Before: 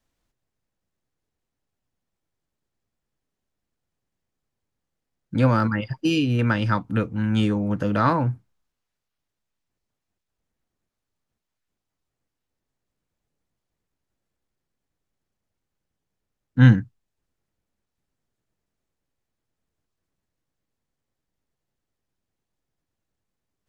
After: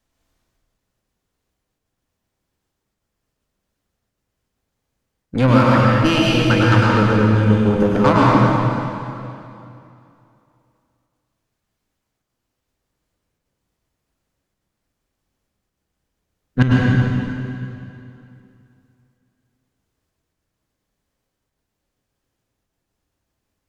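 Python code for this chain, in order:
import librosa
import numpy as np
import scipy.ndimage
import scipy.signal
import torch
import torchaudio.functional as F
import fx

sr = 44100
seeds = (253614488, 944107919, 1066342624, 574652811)

y = fx.step_gate(x, sr, bpm=194, pattern='xxxxx..x.xxxx.x', floor_db=-12.0, edge_ms=4.5)
y = fx.cheby_harmonics(y, sr, harmonics=(8,), levels_db=(-21,), full_scale_db=-4.5)
y = fx.rev_plate(y, sr, seeds[0], rt60_s=2.7, hf_ratio=0.9, predelay_ms=90, drr_db=-5.5)
y = y * 10.0 ** (3.0 / 20.0)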